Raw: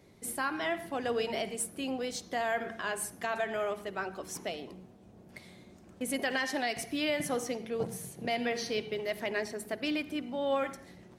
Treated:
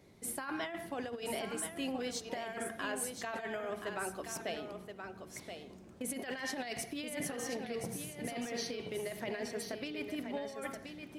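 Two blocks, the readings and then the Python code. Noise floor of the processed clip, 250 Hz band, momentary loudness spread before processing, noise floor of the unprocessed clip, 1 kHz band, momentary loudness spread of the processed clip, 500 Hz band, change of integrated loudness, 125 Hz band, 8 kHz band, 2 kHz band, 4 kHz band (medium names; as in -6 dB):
-54 dBFS, -4.0 dB, 8 LU, -56 dBFS, -7.0 dB, 8 LU, -6.5 dB, -6.0 dB, -2.5 dB, -1.5 dB, -6.5 dB, -5.5 dB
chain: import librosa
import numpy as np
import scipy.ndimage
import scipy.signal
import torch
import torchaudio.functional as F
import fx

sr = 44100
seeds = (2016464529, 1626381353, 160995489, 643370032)

p1 = fx.over_compress(x, sr, threshold_db=-34.0, ratio=-0.5)
p2 = p1 + fx.echo_single(p1, sr, ms=1026, db=-7.0, dry=0)
y = F.gain(torch.from_numpy(p2), -4.0).numpy()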